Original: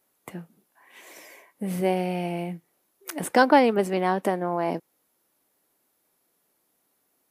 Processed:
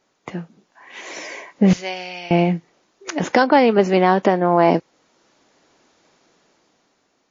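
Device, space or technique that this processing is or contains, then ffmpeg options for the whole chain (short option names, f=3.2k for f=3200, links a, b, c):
low-bitrate web radio: -filter_complex "[0:a]asettb=1/sr,asplit=3[a][b][c];[a]atrim=end=1.734[d];[b]atrim=start=1.73:end=2.31,asetpts=PTS-STARTPTS,afade=t=in:d=0.004:c=qsin,afade=t=out:st=0.576:d=0.004:c=qsin,aderivative[e];[c]atrim=start=2.306[f];[d][e]acrossfade=d=0.004:c1=hsin:c2=qsin[g];[g][f]acrossfade=d=0.004:c1=qsin:c2=hsin,dynaudnorm=f=250:g=9:m=9dB,alimiter=limit=-12dB:level=0:latency=1:release=474,volume=9dB" -ar 16000 -c:a libmp3lame -b:a 32k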